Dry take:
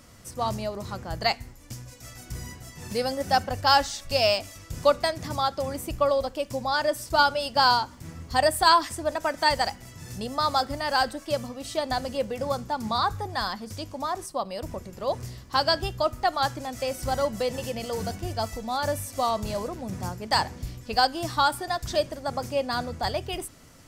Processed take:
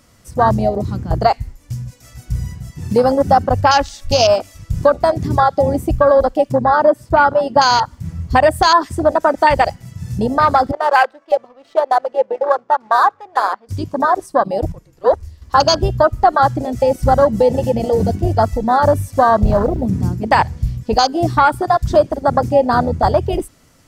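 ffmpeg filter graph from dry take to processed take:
-filter_complex "[0:a]asettb=1/sr,asplit=3[a][b][c];[a]atrim=end=6.524[d];[b]atrim=start=6.52:end=7.59,asetpts=PTS-STARTPTS,afade=t=in:d=0.004:c=qsin,afade=t=out:st=1.066:d=0.004:c=qsin,highpass=f=58:w=0.5412,highpass=f=58:w=1.3066,highshelf=f=3k:g=-11.5,bandreject=f=5.7k:w=21[e];[c]atrim=start=7.586[f];[d][e]acrossfade=d=0.004:c1=hsin:c2=qsin[g];[g][f]acrossfade=d=0.004:c1=qsin:c2=hsin,asettb=1/sr,asplit=3[h][i][j];[h]atrim=end=10.714[k];[i]atrim=start=10.71:end=13.69,asetpts=PTS-STARTPTS,afade=t=in:d=0.004:c=qsin,afade=t=out:st=2.976:d=0.004:c=qsin,highpass=540,highshelf=f=7.4k:g=3,adynamicsmooth=sensitivity=4.5:basefreq=1.1k[l];[j]atrim=start=13.686[m];[k][l]acrossfade=d=0.004:c1=hsin:c2=qsin[n];[n][m]acrossfade=d=0.004:c1=qsin:c2=hsin,asettb=1/sr,asplit=3[o][p][q];[o]atrim=end=14.724[r];[p]atrim=start=14.72:end=15.42,asetpts=PTS-STARTPTS,afade=t=in:d=0.004:c=qsin,afade=t=out:st=0.696:d=0.004:c=qsin,agate=range=-9dB:threshold=-32dB:ratio=16:release=100:detection=peak,afreqshift=-47[s];[q]atrim=start=15.416[t];[r][s]acrossfade=d=0.004:c1=hsin:c2=qsin[u];[u][t]acrossfade=d=0.004:c1=qsin:c2=hsin,asettb=1/sr,asplit=3[v][w][x];[v]atrim=end=19.414[y];[w]atrim=start=19.41:end=19.86,asetpts=PTS-STARTPTS,afade=t=in:d=0.004:c=qsin,afade=t=out:st=0.446:d=0.004:c=qsin,lowshelf=f=74:g=10.5,adynamicsmooth=sensitivity=7.5:basefreq=5.3k,acrusher=bits=6:mode=log:mix=0:aa=0.000001[z];[x]atrim=start=19.856[aa];[y][z]acrossfade=d=0.004:c1=hsin:c2=qsin[ab];[ab][aa]acrossfade=d=0.004:c1=qsin:c2=hsin,afwtdn=0.0447,acompressor=threshold=-25dB:ratio=2,alimiter=level_in=17.5dB:limit=-1dB:release=50:level=0:latency=1,volume=-1dB"

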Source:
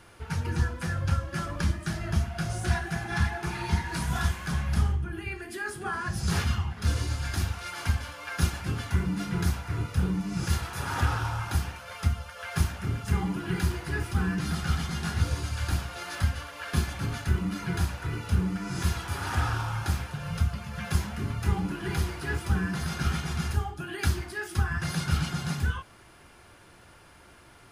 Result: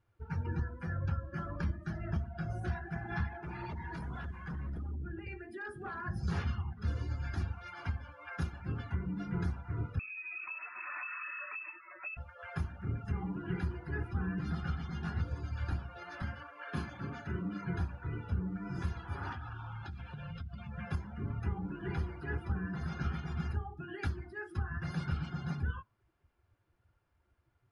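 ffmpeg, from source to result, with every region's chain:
-filter_complex "[0:a]asettb=1/sr,asplit=3[a][b][c];[a]atrim=end=3.294[d];[b]atrim=start=3.29:end=6.01,asetpts=PTS-STARTPTS,afade=t=in:d=0.004:c=qsin,afade=t=out:st=2.716:d=0.004:c=qsin,acompressor=threshold=-27dB:ratio=12:attack=3.2:release=140:knee=1:detection=peak,aeval=exprs='0.0376*(abs(mod(val(0)/0.0376+3,4)-2)-1)':c=same[e];[c]atrim=start=6.006[f];[d][e]acrossfade=d=0.004:c1=hsin:c2=qsin[g];[g][f]acrossfade=d=0.004:c1=qsin:c2=hsin,asettb=1/sr,asplit=3[h][i][j];[h]atrim=end=9.994[k];[i]atrim=start=9.99:end=12.17,asetpts=PTS-STARTPTS,afade=t=in:d=0.004:c=qsin,afade=t=out:st=2.176:d=0.004:c=qsin,acompressor=threshold=-28dB:ratio=6:attack=3.2:release=140:knee=1:detection=peak,lowpass=f=2.3k:t=q:w=0.5098,lowpass=f=2.3k:t=q:w=0.6013,lowpass=f=2.3k:t=q:w=0.9,lowpass=f=2.3k:t=q:w=2.563,afreqshift=-2700[l];[j]atrim=start=12.166[m];[k][l]acrossfade=d=0.004:c1=hsin:c2=qsin[n];[n][m]acrossfade=d=0.004:c1=qsin:c2=hsin,asettb=1/sr,asplit=3[o][p][q];[o]atrim=end=16.224[r];[p]atrim=start=16.22:end=17.64,asetpts=PTS-STARTPTS,afade=t=in:d=0.004:c=qsin,afade=t=out:st=1.416:d=0.004:c=qsin,highpass=140,asplit=2[s][t];[t]adelay=40,volume=-7dB[u];[s][u]amix=inputs=2:normalize=0,atrim=end_sample=62622[v];[q]atrim=start=17.636[w];[r][v]acrossfade=d=0.004:c1=hsin:c2=qsin[x];[x][w]acrossfade=d=0.004:c1=qsin:c2=hsin,asettb=1/sr,asplit=3[y][z][aa];[y]atrim=end=19.324[ab];[z]atrim=start=19.32:end=20.67,asetpts=PTS-STARTPTS,afade=t=in:d=0.004:c=qsin,afade=t=out:st=1.346:d=0.004:c=qsin,equalizer=f=3.6k:w=0.89:g=8,acompressor=threshold=-32dB:ratio=12:attack=3.2:release=140:knee=1:detection=peak[ac];[aa]atrim=start=20.666[ad];[ab][ac]acrossfade=d=0.004:c1=hsin:c2=qsin[ae];[ae][ad]acrossfade=d=0.004:c1=qsin:c2=hsin,afftdn=nr=20:nf=-40,lowpass=f=1.9k:p=1,alimiter=limit=-19dB:level=0:latency=1:release=340,volume=-5.5dB"

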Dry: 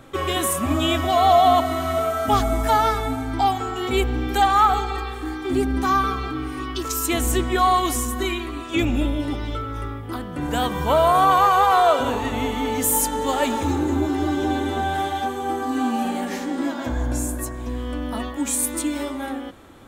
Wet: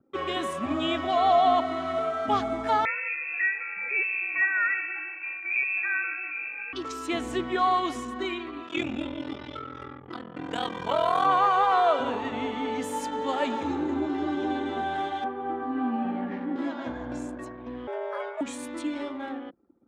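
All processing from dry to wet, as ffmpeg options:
-filter_complex "[0:a]asettb=1/sr,asplit=3[a][b][c];[a]atrim=end=2.854[d];[b]atrim=start=2.85:end=6.73,asetpts=PTS-STARTPTS,afade=t=in:d=0.004:c=qsin,afade=t=out:st=3.876:d=0.004:c=qsin,highpass=43,equalizer=f=1.5k:t=o:w=0.67:g=-9.5,lowpass=f=2.3k:t=q:w=0.5098,lowpass=f=2.3k:t=q:w=0.6013,lowpass=f=2.3k:t=q:w=0.9,lowpass=f=2.3k:t=q:w=2.563,afreqshift=-2700[e];[c]atrim=start=6.726[f];[d][e]acrossfade=d=0.004:c1=hsin:c2=qsin[g];[g][f]acrossfade=d=0.004:c1=qsin:c2=hsin,asettb=1/sr,asplit=3[h][i][j];[h]atrim=end=8.674[k];[i]atrim=start=8.67:end=11.26,asetpts=PTS-STARTPTS,afade=t=in:d=0.004:c=qsin,afade=t=out:st=2.586:d=0.004:c=qsin,highshelf=f=2.7k:g=8,aeval=exprs='val(0)*sin(2*PI*21*n/s)':c=same[l];[j]atrim=start=11.256[m];[k][l]acrossfade=d=0.004:c1=hsin:c2=qsin[n];[n][m]acrossfade=d=0.004:c1=qsin:c2=hsin,asettb=1/sr,asplit=3[o][p][q];[o]atrim=end=15.244[r];[p]atrim=start=15.24:end=16.56,asetpts=PTS-STARTPTS,afade=t=in:d=0.004:c=qsin,afade=t=out:st=1.316:d=0.004:c=qsin,lowpass=1.9k,asubboost=boost=7:cutoff=230[s];[q]atrim=start=16.556[t];[r][s]acrossfade=d=0.004:c1=hsin:c2=qsin[u];[u][t]acrossfade=d=0.004:c1=qsin:c2=hsin,asettb=1/sr,asplit=3[v][w][x];[v]atrim=end=17.874[y];[w]atrim=start=17.87:end=18.41,asetpts=PTS-STARTPTS,afade=t=in:d=0.004:c=qsin,afade=t=out:st=0.536:d=0.004:c=qsin,equalizer=f=3.7k:w=2.9:g=-13.5,afreqshift=340[z];[x]atrim=start=18.406[aa];[y][z]acrossfade=d=0.004:c1=hsin:c2=qsin[ab];[ab][aa]acrossfade=d=0.004:c1=qsin:c2=hsin,lowpass=3.9k,anlmdn=1,highpass=170,volume=-5.5dB"

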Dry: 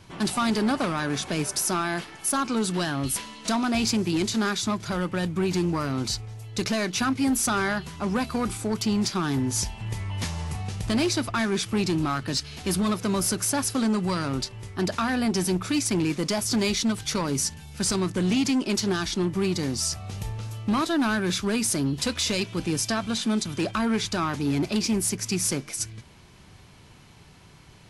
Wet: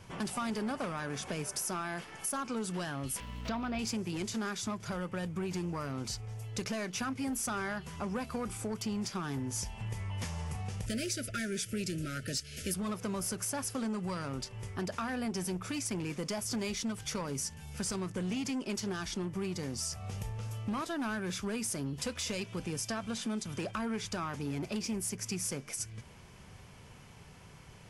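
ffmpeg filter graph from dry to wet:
-filter_complex "[0:a]asettb=1/sr,asplit=3[a][b][c];[a]atrim=end=3.204[d];[b]atrim=start=3.2:end=3.79,asetpts=PTS-STARTPTS,afade=t=in:d=0.004:c=qsin,afade=t=out:st=0.586:d=0.004:c=qsin,lowpass=f=4.3k:w=0.5412,lowpass=f=4.3k:w=1.3066,aeval=exprs='sgn(val(0))*max(abs(val(0))-0.00266,0)':c=same,aeval=exprs='val(0)+0.0141*(sin(2*PI*60*n/s)+sin(2*PI*2*60*n/s)/2+sin(2*PI*3*60*n/s)/3+sin(2*PI*4*60*n/s)/4+sin(2*PI*5*60*n/s)/5)':c=same[e];[c]atrim=start=3.786[f];[d][e]acrossfade=d=0.004:c1=hsin:c2=qsin[g];[g][f]acrossfade=d=0.004:c1=qsin:c2=hsin,asettb=1/sr,asplit=3[h][i][j];[h]atrim=end=10.864[k];[i]atrim=start=10.86:end=12.74,asetpts=PTS-STARTPTS,afade=t=in:d=0.004:c=qsin,afade=t=out:st=1.876:d=0.004:c=qsin,asuperstop=centerf=930:order=20:qfactor=1.4,highshelf=f=6.2k:g=11.5[l];[j]atrim=start=12.736[m];[k][l]acrossfade=d=0.004:c1=hsin:c2=qsin[n];[n][m]acrossfade=d=0.004:c1=qsin:c2=hsin,equalizer=f=315:t=o:w=0.33:g=-6,equalizer=f=500:t=o:w=0.33:g=4,equalizer=f=4k:t=o:w=0.33:g=-8,acompressor=threshold=-35dB:ratio=2.5,volume=-2dB"

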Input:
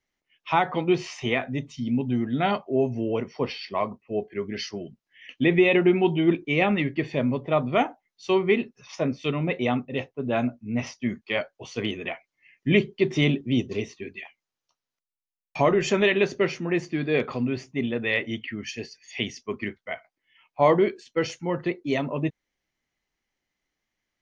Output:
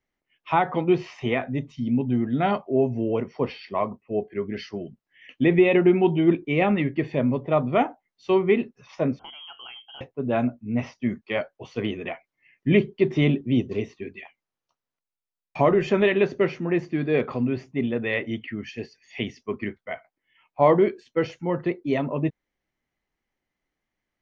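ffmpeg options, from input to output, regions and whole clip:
-filter_complex "[0:a]asettb=1/sr,asplit=3[a][b][c];[a]atrim=end=9.194[d];[b]atrim=start=9.19:end=10.01,asetpts=PTS-STARTPTS,afade=t=in:d=0.004:c=qsin,afade=t=out:st=0.816:d=0.004:c=qsin,lowpass=f=2.9k:t=q:w=0.5098,lowpass=f=2.9k:t=q:w=0.6013,lowpass=f=2.9k:t=q:w=0.9,lowpass=f=2.9k:t=q:w=2.563,afreqshift=-3400,acompressor=threshold=-40dB:ratio=3:attack=3.2:release=140:knee=1:detection=peak,bandreject=f=60:t=h:w=6,bandreject=f=120:t=h:w=6,bandreject=f=180:t=h:w=6,bandreject=f=240:t=h:w=6,bandreject=f=300:t=h:w=6,bandreject=f=360:t=h:w=6[e];[c]atrim=start=10.006[f];[d][e]acrossfade=d=0.004:c1=hsin:c2=qsin[g];[g][f]acrossfade=d=0.004:c1=qsin:c2=hsin,acrossover=split=5400[h][i];[i]acompressor=threshold=-55dB:ratio=4:attack=1:release=60[j];[h][j]amix=inputs=2:normalize=0,highshelf=f=2.9k:g=-12,volume=2dB"

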